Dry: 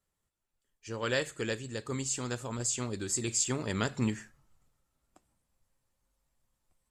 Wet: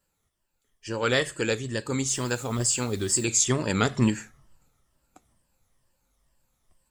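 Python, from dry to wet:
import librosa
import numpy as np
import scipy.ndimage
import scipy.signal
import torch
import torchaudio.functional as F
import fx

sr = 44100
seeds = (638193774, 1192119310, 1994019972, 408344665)

y = fx.spec_ripple(x, sr, per_octave=1.3, drift_hz=-2.2, depth_db=8)
y = fx.dmg_noise_colour(y, sr, seeds[0], colour='white', level_db=-60.0, at=(2.07, 3.24), fade=0.02)
y = y * 10.0 ** (7.0 / 20.0)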